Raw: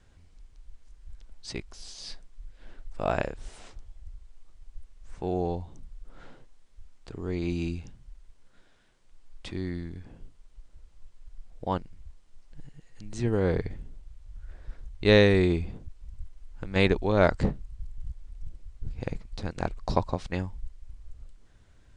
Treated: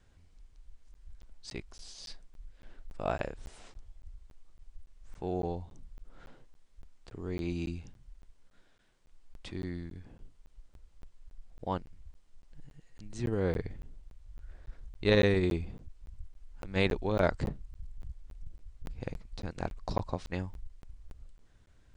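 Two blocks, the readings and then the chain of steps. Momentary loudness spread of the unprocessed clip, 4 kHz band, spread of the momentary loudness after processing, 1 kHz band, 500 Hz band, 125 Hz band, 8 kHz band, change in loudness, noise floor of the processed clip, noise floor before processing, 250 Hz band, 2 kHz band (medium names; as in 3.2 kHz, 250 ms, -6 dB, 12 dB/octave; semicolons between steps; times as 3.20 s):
24 LU, -6.0 dB, 23 LU, -5.5 dB, -5.5 dB, -5.5 dB, no reading, -5.5 dB, -62 dBFS, -57 dBFS, -5.5 dB, -6.0 dB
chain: crackling interface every 0.28 s, samples 512, zero, from 0.94 s; transformer saturation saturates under 200 Hz; trim -4.5 dB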